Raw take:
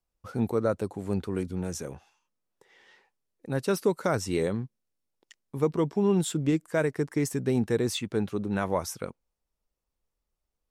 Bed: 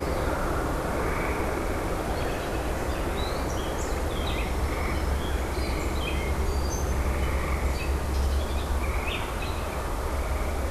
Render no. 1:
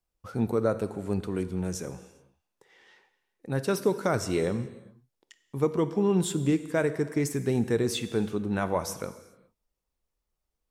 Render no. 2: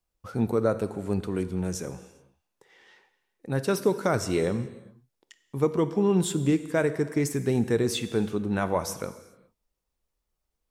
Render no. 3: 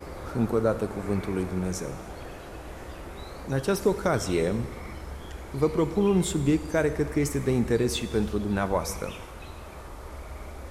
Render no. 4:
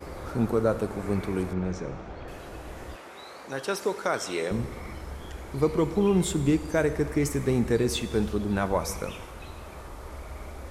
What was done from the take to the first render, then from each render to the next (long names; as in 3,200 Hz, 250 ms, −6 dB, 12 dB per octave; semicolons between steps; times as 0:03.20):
reverb whose tail is shaped and stops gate 440 ms falling, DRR 11 dB
level +1.5 dB
mix in bed −11.5 dB
0:01.53–0:02.28: high-frequency loss of the air 170 metres; 0:02.96–0:04.51: meter weighting curve A